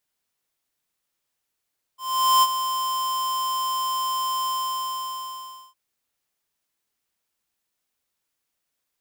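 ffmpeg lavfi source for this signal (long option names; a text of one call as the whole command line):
ffmpeg -f lavfi -i "aevalsrc='0.168*(2*lt(mod(1040*t,1),0.5)-1)':duration=3.76:sample_rate=44100,afade=type=in:duration=0.444,afade=type=out:start_time=0.444:duration=0.041:silence=0.316,afade=type=out:start_time=2.49:duration=1.27" out.wav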